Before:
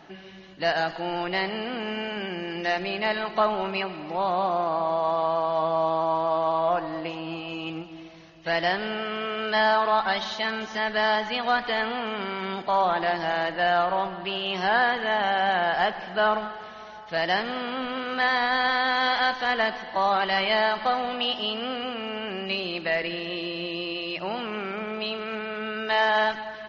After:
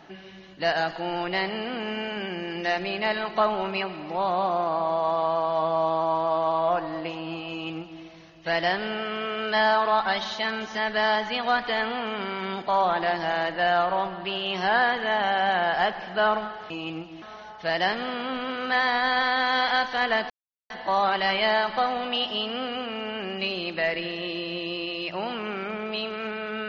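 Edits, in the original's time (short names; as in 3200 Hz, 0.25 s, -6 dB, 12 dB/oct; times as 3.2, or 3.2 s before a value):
7.5–8.02 copy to 16.7
19.78 insert silence 0.40 s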